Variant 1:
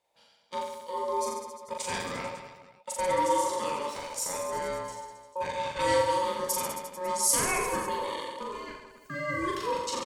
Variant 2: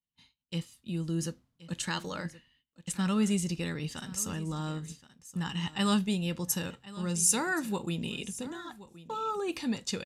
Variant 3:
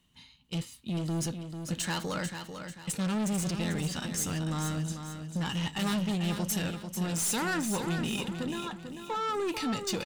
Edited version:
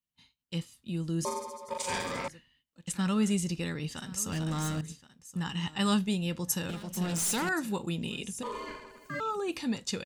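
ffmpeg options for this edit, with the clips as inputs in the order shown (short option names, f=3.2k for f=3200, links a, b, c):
-filter_complex "[0:a]asplit=2[a][b];[2:a]asplit=2[c][d];[1:a]asplit=5[e][f][g][h][i];[e]atrim=end=1.252[j];[a]atrim=start=1.248:end=2.282[k];[f]atrim=start=2.278:end=4.322[l];[c]atrim=start=4.318:end=4.812[m];[g]atrim=start=4.808:end=6.692[n];[d]atrim=start=6.688:end=7.492[o];[h]atrim=start=7.488:end=8.432[p];[b]atrim=start=8.428:end=9.202[q];[i]atrim=start=9.198[r];[j][k]acrossfade=d=0.004:c1=hsin:c2=hsin[s];[s][l]acrossfade=d=0.004:c1=hsin:c2=hsin[t];[t][m]acrossfade=d=0.004:c1=hsin:c2=hsin[u];[u][n]acrossfade=d=0.004:c1=hsin:c2=hsin[v];[v][o]acrossfade=d=0.004:c1=hsin:c2=hsin[w];[w][p]acrossfade=d=0.004:c1=hsin:c2=hsin[x];[x][q]acrossfade=d=0.004:c1=hsin:c2=hsin[y];[y][r]acrossfade=d=0.004:c1=hsin:c2=hsin"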